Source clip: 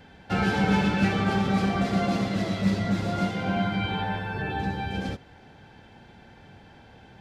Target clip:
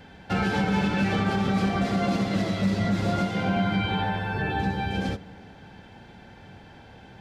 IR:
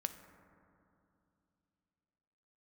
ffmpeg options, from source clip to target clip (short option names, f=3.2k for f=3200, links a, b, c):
-filter_complex "[0:a]alimiter=limit=-18.5dB:level=0:latency=1:release=117,asplit=2[a][b];[1:a]atrim=start_sample=2205[c];[b][c]afir=irnorm=-1:irlink=0,volume=-7.5dB[d];[a][d]amix=inputs=2:normalize=0"